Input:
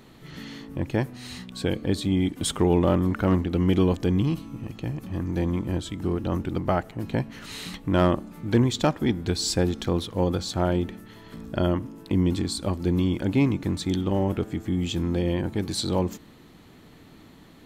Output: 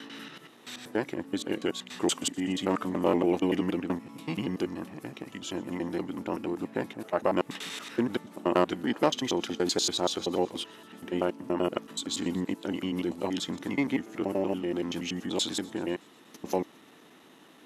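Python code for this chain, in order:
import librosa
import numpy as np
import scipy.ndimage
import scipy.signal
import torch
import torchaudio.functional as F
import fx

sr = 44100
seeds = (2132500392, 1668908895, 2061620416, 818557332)

p1 = fx.block_reorder(x, sr, ms=95.0, group=7)
p2 = scipy.signal.sosfilt(scipy.signal.butter(2, 350.0, 'highpass', fs=sr, output='sos'), p1)
p3 = fx.formant_shift(p2, sr, semitones=-2)
y = p3 + fx.echo_wet_highpass(p3, sr, ms=123, feedback_pct=69, hz=3200.0, wet_db=-22.5, dry=0)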